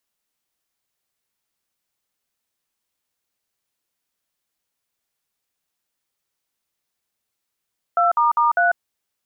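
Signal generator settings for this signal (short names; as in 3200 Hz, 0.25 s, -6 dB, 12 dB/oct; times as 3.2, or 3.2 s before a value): DTMF "2**3", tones 0.146 s, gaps 54 ms, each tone -16.5 dBFS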